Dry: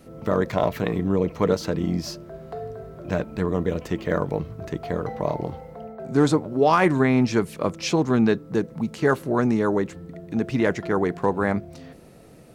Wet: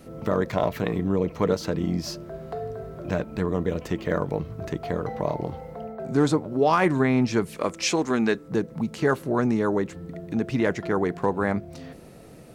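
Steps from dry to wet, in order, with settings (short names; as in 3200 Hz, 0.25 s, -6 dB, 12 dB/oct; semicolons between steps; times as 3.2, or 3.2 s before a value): 7.56–8.48 graphic EQ 125/2000/8000 Hz -11/+5/+8 dB; in parallel at -1 dB: compressor, threshold -31 dBFS, peak gain reduction 16.5 dB; on the sum: gain -3.5 dB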